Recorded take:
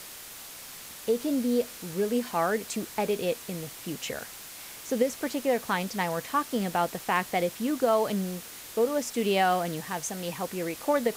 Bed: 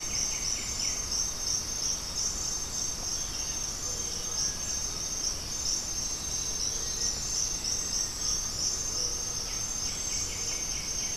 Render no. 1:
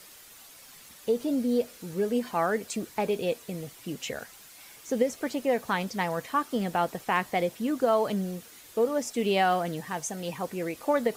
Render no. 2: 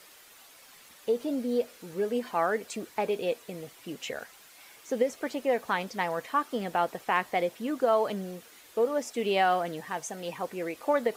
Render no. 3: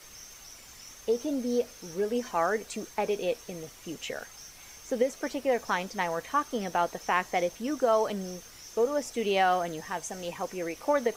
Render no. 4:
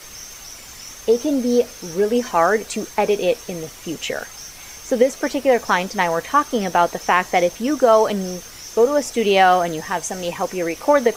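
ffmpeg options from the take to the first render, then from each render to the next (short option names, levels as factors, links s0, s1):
-af "afftdn=nr=9:nf=-44"
-af "bass=f=250:g=-9,treble=f=4000:g=-5"
-filter_complex "[1:a]volume=0.119[s0];[0:a][s0]amix=inputs=2:normalize=0"
-af "volume=3.55,alimiter=limit=0.794:level=0:latency=1"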